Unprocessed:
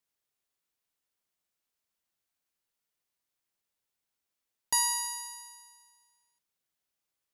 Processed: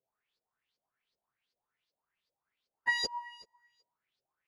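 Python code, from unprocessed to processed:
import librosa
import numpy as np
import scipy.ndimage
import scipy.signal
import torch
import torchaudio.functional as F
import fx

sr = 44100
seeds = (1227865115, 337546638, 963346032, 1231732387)

y = fx.rev_fdn(x, sr, rt60_s=0.7, lf_ratio=1.1, hf_ratio=0.55, size_ms=45.0, drr_db=9.5)
y = fx.filter_lfo_lowpass(y, sr, shape='saw_up', hz=1.6, low_hz=470.0, high_hz=5000.0, q=6.1)
y = fx.stretch_vocoder_free(y, sr, factor=0.61)
y = y * 10.0 ** (1.5 / 20.0)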